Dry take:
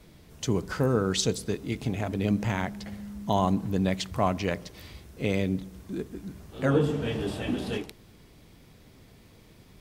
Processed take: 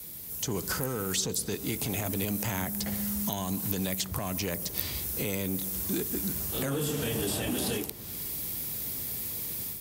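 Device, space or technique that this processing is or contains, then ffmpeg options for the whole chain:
FM broadcast chain: -filter_complex "[0:a]highpass=50,dynaudnorm=framelen=440:gausssize=3:maxgain=9dB,acrossover=split=410|1500|6600[link_01][link_02][link_03][link_04];[link_01]acompressor=threshold=-31dB:ratio=4[link_05];[link_02]acompressor=threshold=-36dB:ratio=4[link_06];[link_03]acompressor=threshold=-44dB:ratio=4[link_07];[link_04]acompressor=threshold=-59dB:ratio=4[link_08];[link_05][link_06][link_07][link_08]amix=inputs=4:normalize=0,aemphasis=mode=production:type=50fm,alimiter=limit=-22dB:level=0:latency=1:release=18,asoftclip=type=hard:threshold=-24.5dB,lowpass=frequency=15000:width=0.5412,lowpass=frequency=15000:width=1.3066,aemphasis=mode=production:type=50fm"

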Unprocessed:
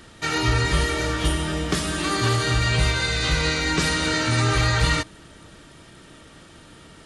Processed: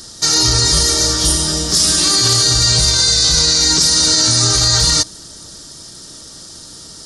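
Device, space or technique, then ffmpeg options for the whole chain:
over-bright horn tweeter: -filter_complex "[0:a]asettb=1/sr,asplit=3[link_01][link_02][link_03];[link_01]atrim=end=1.784[link_04];[link_02]atrim=start=1.78:end=2.43,asetpts=PTS-STARTPTS,afade=type=in:duration=0.004:curve=qsin,afade=type=out:start_time=0.646:duration=0.004:curve=qsin,equalizer=frequency=2400:width_type=o:width=0.82:gain=6.5[link_05];[link_03]atrim=start=2.426[link_06];[link_04][link_05]acrossfade=duration=0.004:curve1=hsin:curve2=qsin[link_07];[link_07][link_06]acrossfade=duration=0.004:curve1=qsin:curve2=hsin,highshelf=frequency=3600:width_type=q:width=3:gain=13,alimiter=limit=-7.5dB:level=0:latency=1:release=13,volume=4dB"

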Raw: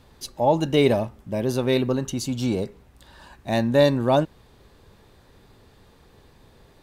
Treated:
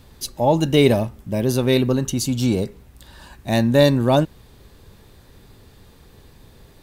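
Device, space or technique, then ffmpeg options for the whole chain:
smiley-face EQ: -af "lowshelf=frequency=160:gain=3,equalizer=frequency=830:width_type=o:width=2.1:gain=-3.5,highshelf=frequency=9700:gain=8.5,volume=4.5dB"

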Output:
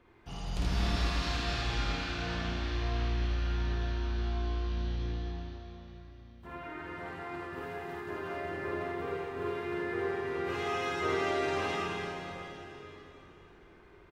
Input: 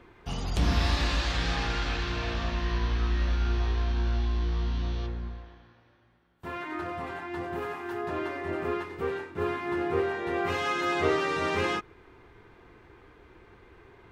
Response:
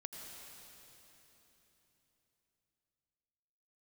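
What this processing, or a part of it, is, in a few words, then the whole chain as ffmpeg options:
cave: -filter_complex "[0:a]asettb=1/sr,asplit=3[link_01][link_02][link_03];[link_01]atrim=end=5.314[link_04];[link_02]atrim=start=5.31:end=6.87,asetpts=PTS-STARTPTS,afade=type=in:duration=0.004:curve=qsin,afade=type=out:start_time=1.556:duration=0.004:curve=qsin,acrossover=split=3000[link_05][link_06];[link_06]acompressor=threshold=-59dB:ratio=4:attack=1:release=60[link_07];[link_05][link_07]amix=inputs=2:normalize=0[link_08];[link_03]atrim=start=6.866[link_09];[link_04][link_08]acrossfade=duration=0.004:curve1=hsin:curve2=qsin[link_10];[link_10][link_09]acrossfade=duration=0.004:curve1=qsin:curve2=hsin,aecho=1:1:216:0.376[link_11];[1:a]atrim=start_sample=2205[link_12];[link_11][link_12]afir=irnorm=-1:irlink=0,aecho=1:1:52|79:0.708|0.631,volume=-4.5dB"

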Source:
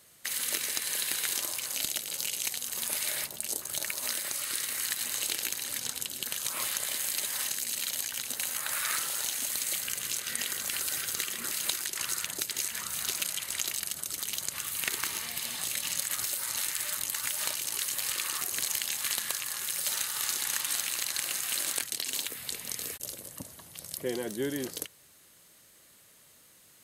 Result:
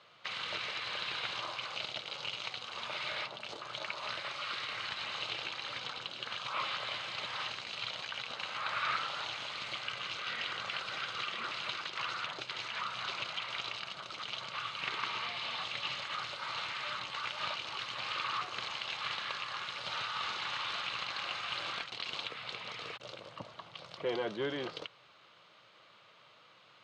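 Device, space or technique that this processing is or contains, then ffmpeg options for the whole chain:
overdrive pedal into a guitar cabinet: -filter_complex "[0:a]asplit=2[link_01][link_02];[link_02]highpass=frequency=720:poles=1,volume=21dB,asoftclip=type=tanh:threshold=-11dB[link_03];[link_01][link_03]amix=inputs=2:normalize=0,lowpass=frequency=3000:poles=1,volume=-6dB,highpass=100,equalizer=frequency=120:width_type=q:width=4:gain=8,equalizer=frequency=260:width_type=q:width=4:gain=-9,equalizer=frequency=390:width_type=q:width=4:gain=-4,equalizer=frequency=1200:width_type=q:width=4:gain=5,equalizer=frequency=1800:width_type=q:width=4:gain=-9,lowpass=frequency=3900:width=0.5412,lowpass=frequency=3900:width=1.3066,volume=-7dB"

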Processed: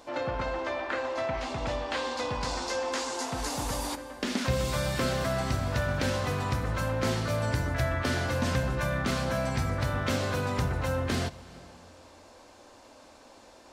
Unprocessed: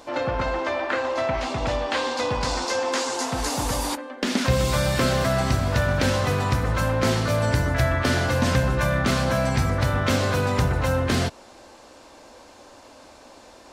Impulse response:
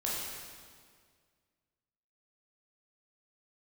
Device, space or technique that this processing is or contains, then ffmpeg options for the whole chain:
compressed reverb return: -filter_complex "[0:a]asplit=2[link_01][link_02];[1:a]atrim=start_sample=2205[link_03];[link_02][link_03]afir=irnorm=-1:irlink=0,acompressor=threshold=-22dB:ratio=6,volume=-13.5dB[link_04];[link_01][link_04]amix=inputs=2:normalize=0,volume=-7.5dB"

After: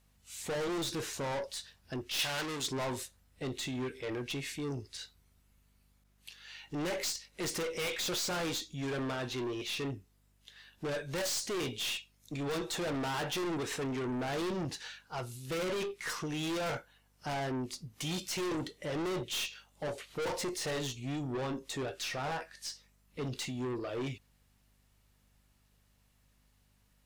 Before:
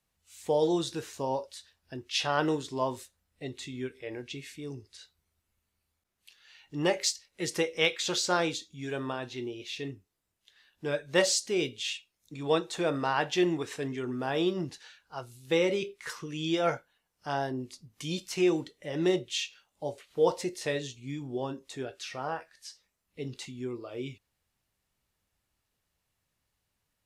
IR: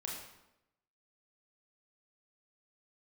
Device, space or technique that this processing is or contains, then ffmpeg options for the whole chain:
valve amplifier with mains hum: -filter_complex "[0:a]aeval=exprs='(tanh(100*val(0)+0.15)-tanh(0.15))/100':channel_layout=same,aeval=exprs='val(0)+0.000158*(sin(2*PI*50*n/s)+sin(2*PI*2*50*n/s)/2+sin(2*PI*3*50*n/s)/3+sin(2*PI*4*50*n/s)/4+sin(2*PI*5*50*n/s)/5)':channel_layout=same,asettb=1/sr,asplit=3[link_01][link_02][link_03];[link_01]atrim=end=2.194[link_04];[link_02]atrim=start=2.19:end=2.68,asetpts=PTS-STARTPTS,afade=type=in:duration=0.004:curve=qsin,afade=type=out:start_time=0.486:duration=0.004:curve=qsin,tiltshelf=frequency=1200:gain=-6[link_05];[link_03]atrim=start=2.676[link_06];[link_04][link_05]acrossfade=duration=0.004:curve1=hsin:curve2=qsin[link_07];[link_07][link_06]acrossfade=duration=0.004:curve1=qsin:curve2=hsin,volume=7dB"

